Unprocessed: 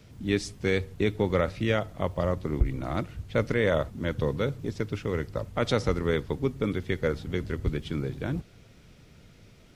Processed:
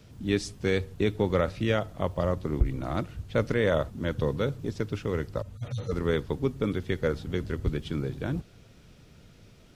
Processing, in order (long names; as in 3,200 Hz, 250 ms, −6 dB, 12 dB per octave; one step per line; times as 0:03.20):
0:05.42–0:05.92: harmonic-percussive split with one part muted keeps harmonic
parametric band 2,100 Hz −4 dB 0.29 octaves